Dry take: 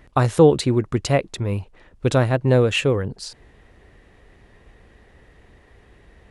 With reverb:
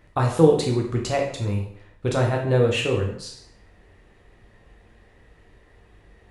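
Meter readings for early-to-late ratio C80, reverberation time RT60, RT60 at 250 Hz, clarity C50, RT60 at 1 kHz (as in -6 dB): 9.5 dB, 0.65 s, 0.65 s, 5.5 dB, 0.65 s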